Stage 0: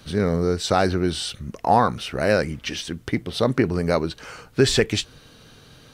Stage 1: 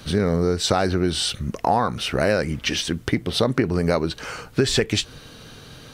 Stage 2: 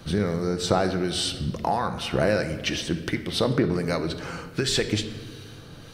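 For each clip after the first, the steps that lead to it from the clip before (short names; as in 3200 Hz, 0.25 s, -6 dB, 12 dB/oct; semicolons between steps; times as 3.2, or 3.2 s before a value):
compressor 4:1, threshold -23 dBFS, peak gain reduction 10.5 dB; gain +6 dB
harmonic tremolo 1.4 Hz, depth 50%, crossover 1400 Hz; shoebox room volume 1800 m³, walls mixed, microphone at 0.75 m; gain -1.5 dB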